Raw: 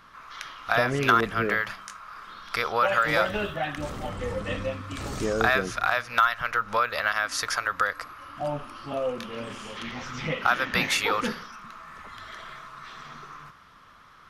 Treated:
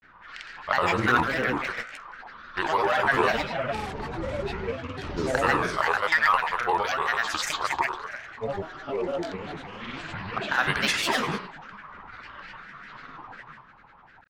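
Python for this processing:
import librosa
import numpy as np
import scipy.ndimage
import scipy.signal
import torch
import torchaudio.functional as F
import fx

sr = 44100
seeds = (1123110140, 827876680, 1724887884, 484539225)

y = fx.echo_thinned(x, sr, ms=80, feedback_pct=56, hz=170.0, wet_db=-5.5)
y = fx.env_lowpass(y, sr, base_hz=1900.0, full_db=-20.5)
y = fx.granulator(y, sr, seeds[0], grain_ms=100.0, per_s=20.0, spray_ms=100.0, spread_st=7)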